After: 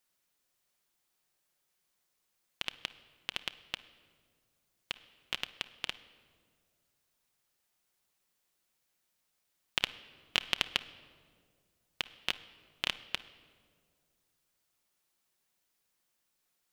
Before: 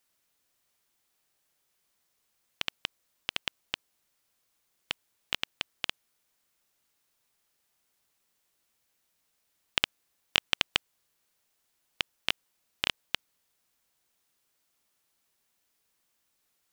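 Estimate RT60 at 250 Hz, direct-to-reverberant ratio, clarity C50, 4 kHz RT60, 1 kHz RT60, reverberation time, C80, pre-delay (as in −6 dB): 2.4 s, 10.0 dB, 15.0 dB, 1.2 s, 1.7 s, 2.0 s, 17.5 dB, 5 ms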